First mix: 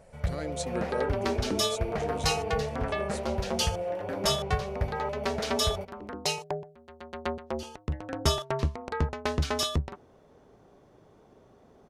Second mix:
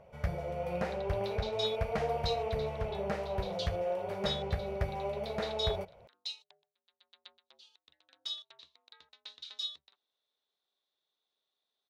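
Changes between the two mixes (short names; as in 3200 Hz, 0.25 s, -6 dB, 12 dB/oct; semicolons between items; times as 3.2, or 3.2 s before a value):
speech: muted; second sound: add band-pass 3800 Hz, Q 9.9; master: add low shelf 270 Hz -4.5 dB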